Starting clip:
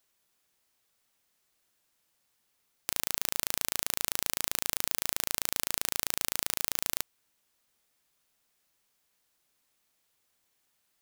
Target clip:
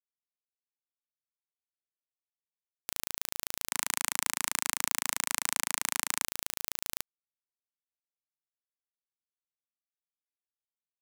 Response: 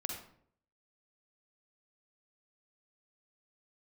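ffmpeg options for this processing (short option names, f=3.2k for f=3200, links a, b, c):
-filter_complex "[0:a]asettb=1/sr,asplit=3[a][b][c];[a]atrim=end=3.714[d];[b]atrim=start=3.71:end=6.25,asetpts=PTS-STARTPTS,afade=t=in:d=0.004:c=qsin,afade=t=out:st=2.536:d=0.004:c=qsin,equalizer=f=125:t=o:w=1:g=-3,equalizer=f=250:t=o:w=1:g=8,equalizer=f=500:t=o:w=1:g=-6,equalizer=f=1k:t=o:w=1:g=11,equalizer=f=2k:t=o:w=1:g=9,equalizer=f=8k:t=o:w=1:g=10[e];[c]atrim=start=6.246[f];[d][e]acrossfade=d=0.004:c1=hsin:c2=qsin[g];[g][f]acrossfade=d=0.004:c1=qsin:c2=hsin,acrusher=bits=9:mix=0:aa=0.000001,volume=-5dB"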